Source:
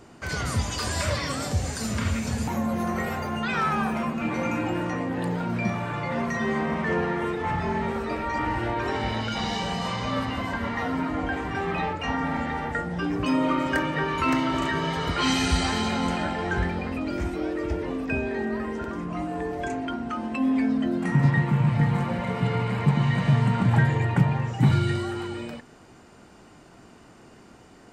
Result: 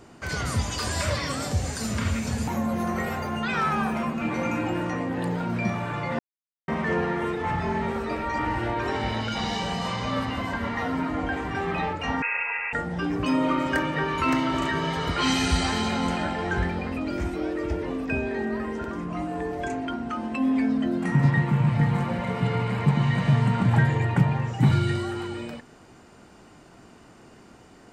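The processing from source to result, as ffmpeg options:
ffmpeg -i in.wav -filter_complex "[0:a]asettb=1/sr,asplit=3[link_01][link_02][link_03];[link_01]atrim=end=12.224[link_04];[link_02]atrim=start=12.22:end=12.73,asetpts=PTS-STARTPTS,afade=type=in:duration=0.004:curve=qsin,afade=type=out:start_time=0.506:duration=0.004:curve=qsin,lowpass=frequency=2400:width_type=q:width=0.5098,lowpass=frequency=2400:width_type=q:width=0.6013,lowpass=frequency=2400:width_type=q:width=0.9,lowpass=frequency=2400:width_type=q:width=2.563,afreqshift=-2800[link_05];[link_03]atrim=start=12.726[link_06];[link_04][link_05]acrossfade=duration=0.004:curve1=hsin:curve2=qsin[link_07];[link_07][link_06]acrossfade=duration=0.004:curve1=qsin:curve2=hsin,asplit=3[link_08][link_09][link_10];[link_08]atrim=end=6.19,asetpts=PTS-STARTPTS,afade=type=out:start_time=6.186:duration=0.004:curve=hsin[link_11];[link_09]atrim=start=6.19:end=6.68,asetpts=PTS-STARTPTS,volume=0[link_12];[link_10]atrim=start=6.68,asetpts=PTS-STARTPTS,afade=type=in:duration=0.004:curve=hsin[link_13];[link_11][link_12][link_13]concat=n=3:v=0:a=1" out.wav

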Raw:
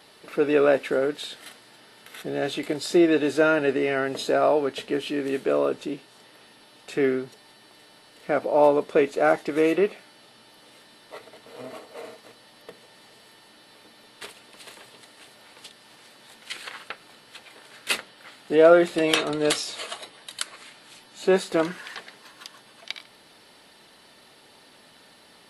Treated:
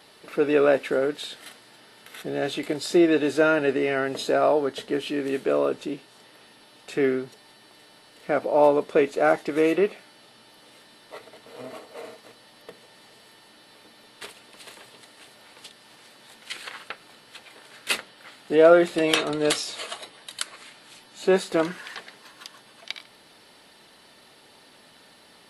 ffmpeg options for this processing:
ffmpeg -i in.wav -filter_complex "[0:a]asettb=1/sr,asplit=3[link_01][link_02][link_03];[link_01]atrim=end=4.524[link_04];[link_02]atrim=start=4.52:end=4.93,asetpts=PTS-STARTPTS,afade=type=in:duration=0.004:curve=qsin,afade=type=out:start_time=0.406:duration=0.004:curve=qsin,equalizer=frequency=2500:width_type=o:width=0.27:gain=-9[link_05];[link_03]atrim=start=4.926[link_06];[link_04][link_05]acrossfade=duration=0.004:curve1=hsin:curve2=qsin[link_07];[link_07][link_06]acrossfade=duration=0.004:curve1=qsin:curve2=hsin" out.wav

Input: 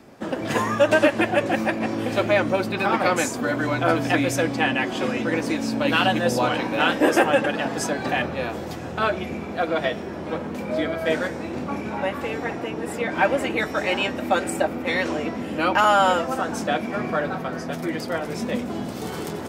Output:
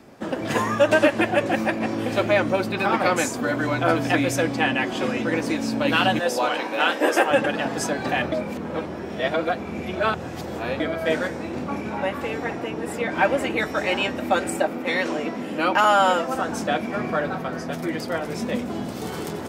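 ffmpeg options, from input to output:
ffmpeg -i in.wav -filter_complex "[0:a]asettb=1/sr,asplit=3[link_01][link_02][link_03];[link_01]atrim=end=6.194[link_04];[link_02]atrim=start=6.19:end=7.31,asetpts=PTS-STARTPTS,afade=type=in:duration=0.004:curve=qsin,afade=type=out:start_time=1.116:duration=0.004:curve=qsin,highpass=370[link_05];[link_03]atrim=start=7.306[link_06];[link_04][link_05]acrossfade=duration=0.004:curve1=hsin:curve2=qsin[link_07];[link_07][link_06]acrossfade=duration=0.004:curve1=qsin:curve2=hsin,asettb=1/sr,asplit=3[link_08][link_09][link_10];[link_08]atrim=end=14.574[link_11];[link_09]atrim=start=14.57:end=16.35,asetpts=PTS-STARTPTS,afade=type=in:duration=0.004:curve=qsin,afade=type=out:start_time=1.776:duration=0.004:curve=qsin,highpass=160[link_12];[link_10]atrim=start=16.346[link_13];[link_11][link_12]acrossfade=duration=0.004:curve1=hsin:curve2=qsin[link_14];[link_14][link_13]acrossfade=duration=0.004:curve1=qsin:curve2=hsin,asplit=3[link_15][link_16][link_17];[link_15]atrim=end=8.322[link_18];[link_16]atrim=start=8.318:end=10.802,asetpts=PTS-STARTPTS,areverse[link_19];[link_17]atrim=start=10.798[link_20];[link_18][link_19]acrossfade=duration=0.004:curve1=hsin:curve2=hsin[link_21];[link_21][link_20]acrossfade=duration=0.004:curve1=hsin:curve2=hsin" out.wav

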